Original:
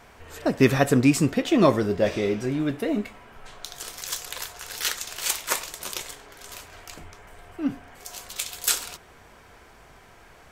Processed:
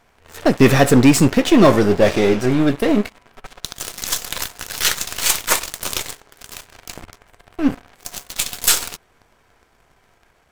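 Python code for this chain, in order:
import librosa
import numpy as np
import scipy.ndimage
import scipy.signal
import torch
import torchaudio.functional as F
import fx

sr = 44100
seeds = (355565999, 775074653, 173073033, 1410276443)

y = np.where(x < 0.0, 10.0 ** (-7.0 / 20.0) * x, x)
y = fx.leveller(y, sr, passes=3)
y = y * 10.0 ** (1.0 / 20.0)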